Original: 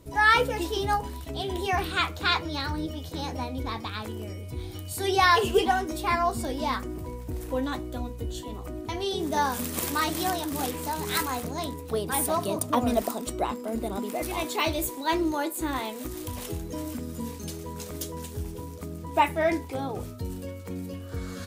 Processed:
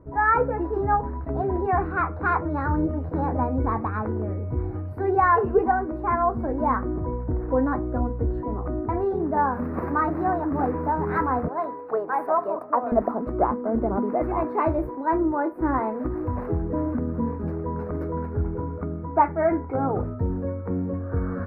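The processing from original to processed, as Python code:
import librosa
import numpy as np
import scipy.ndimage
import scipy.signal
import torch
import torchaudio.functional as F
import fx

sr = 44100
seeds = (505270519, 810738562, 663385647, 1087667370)

y = fx.highpass(x, sr, hz=540.0, slope=12, at=(11.48, 12.92))
y = fx.small_body(y, sr, hz=(1400.0, 2200.0), ring_ms=45, db=10, at=(17.99, 20.02))
y = scipy.signal.sosfilt(scipy.signal.cheby2(4, 40, 3000.0, 'lowpass', fs=sr, output='sos'), y)
y = fx.rider(y, sr, range_db=3, speed_s=0.5)
y = y * librosa.db_to_amplitude(5.5)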